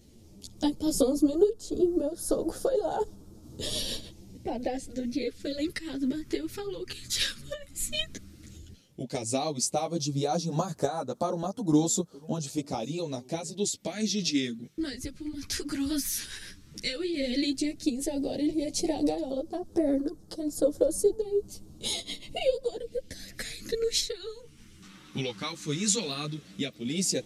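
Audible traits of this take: phasing stages 2, 0.11 Hz, lowest notch 650–2200 Hz; random-step tremolo; a shimmering, thickened sound

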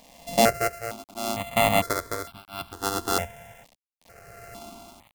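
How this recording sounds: a buzz of ramps at a fixed pitch in blocks of 64 samples; tremolo triangle 0.71 Hz, depth 100%; a quantiser's noise floor 8-bit, dither none; notches that jump at a steady rate 2.2 Hz 380–1900 Hz

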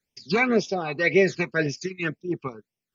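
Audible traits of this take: phasing stages 12, 1.9 Hz, lowest notch 530–1400 Hz

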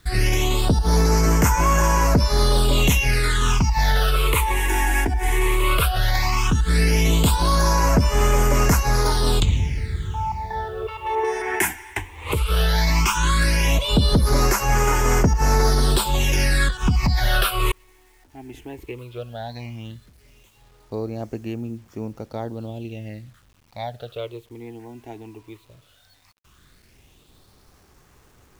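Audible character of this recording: phasing stages 8, 0.15 Hz, lowest notch 160–3800 Hz; a quantiser's noise floor 10-bit, dither none

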